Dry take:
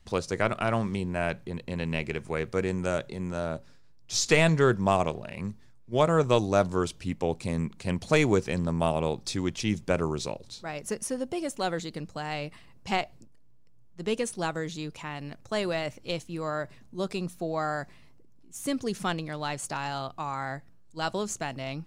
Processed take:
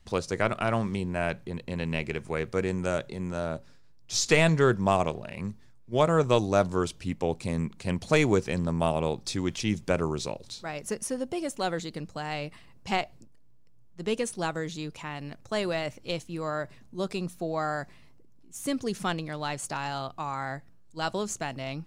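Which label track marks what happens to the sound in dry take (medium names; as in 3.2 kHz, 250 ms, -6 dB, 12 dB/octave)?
9.500000	10.850000	tape noise reduction on one side only encoder only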